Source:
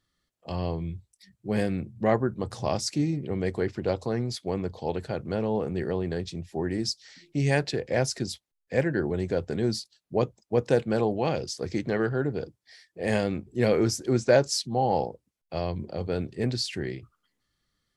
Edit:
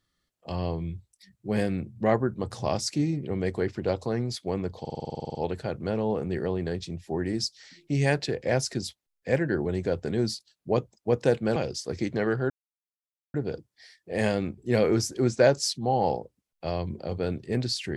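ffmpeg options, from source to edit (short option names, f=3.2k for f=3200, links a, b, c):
-filter_complex "[0:a]asplit=14[a][b][c][d][e][f][g][h][i][j][k][l][m][n];[a]atrim=end=4.852[o];[b]atrim=start=4.798:end=4.852[p];[c]atrim=start=4.798:end=4.852[q];[d]atrim=start=4.798:end=4.852[r];[e]atrim=start=4.798:end=4.852[s];[f]atrim=start=4.798:end=4.852[t];[g]atrim=start=4.798:end=4.852[u];[h]atrim=start=4.798:end=4.852[v];[i]atrim=start=4.798:end=4.852[w];[j]atrim=start=4.798:end=4.852[x];[k]atrim=start=4.798:end=4.852[y];[l]atrim=start=4.798:end=11.012[z];[m]atrim=start=11.288:end=12.23,asetpts=PTS-STARTPTS,afade=t=out:st=0.938:d=0.004:c=hsin,apad=pad_dur=0.84[aa];[n]atrim=start=12.23,asetpts=PTS-STARTPTS,afade=t=in:d=0.004:c=hsin[ab];[o][p]acrossfade=d=0.004:c1=hsin:c2=hsin[ac];[ac][q]acrossfade=d=0.004:c1=hsin:c2=hsin[ad];[ad][r]acrossfade=d=0.004:c1=hsin:c2=hsin[ae];[ae][s]acrossfade=d=0.004:c1=hsin:c2=hsin[af];[af][t]acrossfade=d=0.004:c1=hsin:c2=hsin[ag];[ag][u]acrossfade=d=0.004:c1=hsin:c2=hsin[ah];[ah][v]acrossfade=d=0.004:c1=hsin:c2=hsin[ai];[ai][w]acrossfade=d=0.004:c1=hsin:c2=hsin[aj];[aj][x]acrossfade=d=0.004:c1=hsin:c2=hsin[ak];[ak][y]acrossfade=d=0.004:c1=hsin:c2=hsin[al];[al][z]acrossfade=d=0.004:c1=hsin:c2=hsin[am];[aa][ab]concat=n=2:v=0:a=1[an];[am][an]acrossfade=d=0.004:c1=hsin:c2=hsin"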